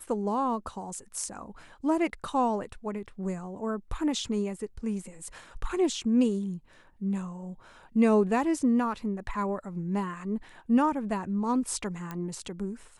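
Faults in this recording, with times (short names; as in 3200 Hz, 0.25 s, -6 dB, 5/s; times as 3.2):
12.11 pop -22 dBFS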